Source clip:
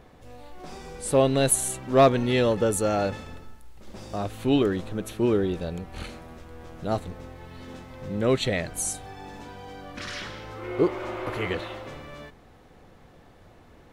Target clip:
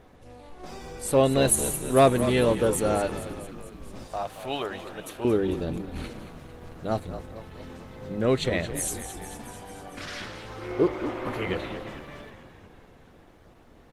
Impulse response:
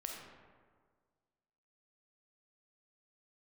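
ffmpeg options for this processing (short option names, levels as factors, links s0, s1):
-filter_complex "[0:a]asettb=1/sr,asplit=3[s0][s1][s2];[s0]atrim=end=4.044[s3];[s1]atrim=start=4.04:end=5.25,asetpts=PTS-STARTPTS,afade=t=in:d=0.004:c=qsin,afade=t=out:st=1.206:d=0.004:c=qsin,lowshelf=f=460:t=q:w=1.5:g=-13[s4];[s2]atrim=start=5.246[s5];[s3][s4]acrossfade=d=0.004:c1=hsin:c2=qsin[s6];[s6][s5]acrossfade=d=0.004:c1=qsin:c2=hsin,bandreject=f=50:t=h:w=6,bandreject=f=100:t=h:w=6,bandreject=f=150:t=h:w=6,bandreject=f=200:t=h:w=6,asplit=9[s7][s8][s9][s10][s11][s12][s13][s14][s15];[s8]adelay=224,afreqshift=-54,volume=0.282[s16];[s9]adelay=448,afreqshift=-108,volume=0.18[s17];[s10]adelay=672,afreqshift=-162,volume=0.115[s18];[s11]adelay=896,afreqshift=-216,volume=0.0741[s19];[s12]adelay=1120,afreqshift=-270,volume=0.0473[s20];[s13]adelay=1344,afreqshift=-324,volume=0.0302[s21];[s14]adelay=1568,afreqshift=-378,volume=0.0193[s22];[s15]adelay=1792,afreqshift=-432,volume=0.0124[s23];[s7][s16][s17][s18][s19][s20][s21][s22][s23]amix=inputs=9:normalize=0" -ar 48000 -c:a libopus -b:a 20k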